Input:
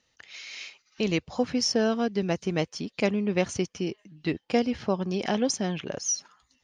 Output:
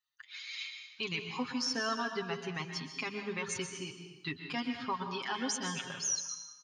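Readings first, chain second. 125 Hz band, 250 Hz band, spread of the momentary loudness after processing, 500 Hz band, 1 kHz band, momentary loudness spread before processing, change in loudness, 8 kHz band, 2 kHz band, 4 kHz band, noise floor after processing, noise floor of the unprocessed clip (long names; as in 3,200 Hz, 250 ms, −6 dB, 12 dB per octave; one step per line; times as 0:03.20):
−12.0 dB, −12.0 dB, 9 LU, −13.5 dB, −3.5 dB, 13 LU, −8.5 dB, −4.5 dB, −2.0 dB, −3.5 dB, −59 dBFS, −73 dBFS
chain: spectral dynamics exaggerated over time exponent 1.5
high-pass filter 95 Hz
low shelf with overshoot 780 Hz −9.5 dB, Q 3
comb filter 7.4 ms, depth 76%
brickwall limiter −27 dBFS, peak gain reduction 12 dB
dense smooth reverb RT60 1 s, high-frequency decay 1×, pre-delay 110 ms, DRR 5.5 dB
level +1.5 dB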